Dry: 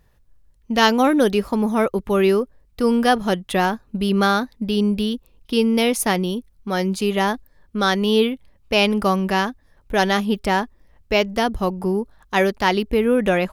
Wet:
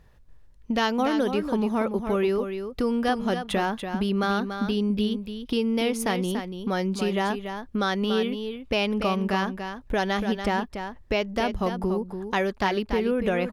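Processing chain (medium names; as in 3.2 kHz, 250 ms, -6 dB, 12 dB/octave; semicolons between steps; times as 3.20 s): treble shelf 8.2 kHz -10.5 dB; compression 2.5:1, threshold -29 dBFS, peak gain reduction 12 dB; on a send: delay 287 ms -8 dB; on the sum: trim +2.5 dB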